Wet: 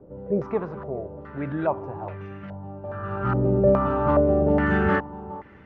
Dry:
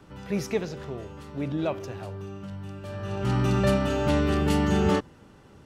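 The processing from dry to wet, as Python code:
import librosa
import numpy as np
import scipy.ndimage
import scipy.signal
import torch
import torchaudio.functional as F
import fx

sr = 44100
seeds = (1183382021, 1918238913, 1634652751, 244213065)

y = fx.echo_feedback(x, sr, ms=417, feedback_pct=18, wet_db=-17.5)
y = fx.filter_held_lowpass(y, sr, hz=2.4, low_hz=520.0, high_hz=2000.0)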